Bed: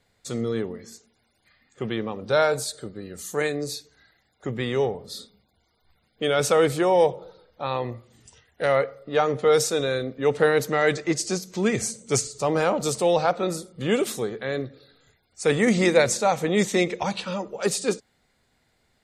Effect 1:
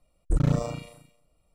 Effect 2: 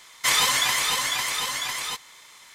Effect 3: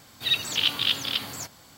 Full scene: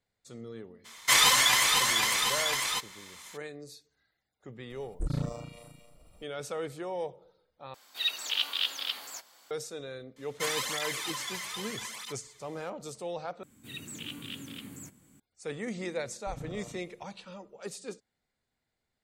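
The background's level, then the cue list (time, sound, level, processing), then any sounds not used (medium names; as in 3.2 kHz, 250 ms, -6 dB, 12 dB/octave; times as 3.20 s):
bed -16.5 dB
0.84 s: add 2 -0.5 dB, fades 0.02 s
4.70 s: add 1 -9 dB + upward compressor, threshold -30 dBFS
7.74 s: replace with 3 -6 dB + high-pass 570 Hz
10.16 s: add 2 -9 dB + cancelling through-zero flanger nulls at 0.79 Hz, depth 4.3 ms
13.43 s: replace with 3 -8 dB + FFT filter 110 Hz 0 dB, 170 Hz +7 dB, 290 Hz +7 dB, 720 Hz -13 dB, 2.4 kHz -6 dB, 4.9 kHz -19 dB, 7.9 kHz +2 dB, 13 kHz -5 dB
15.97 s: add 1 -14 dB + compression, threshold -24 dBFS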